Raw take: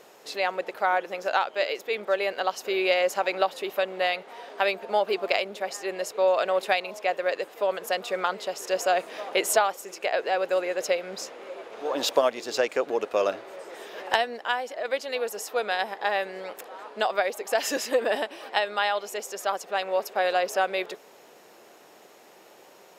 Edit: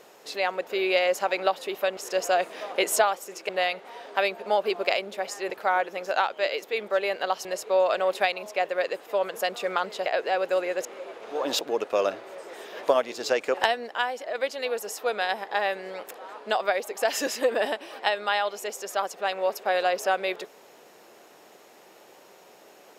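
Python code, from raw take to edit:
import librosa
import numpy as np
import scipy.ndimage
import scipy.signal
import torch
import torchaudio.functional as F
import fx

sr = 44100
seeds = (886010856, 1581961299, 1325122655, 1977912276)

y = fx.edit(x, sr, fx.move(start_s=0.67, length_s=1.95, to_s=5.93),
    fx.move(start_s=8.54, length_s=1.52, to_s=3.92),
    fx.cut(start_s=10.85, length_s=0.5),
    fx.move(start_s=12.11, length_s=0.71, to_s=14.04), tone=tone)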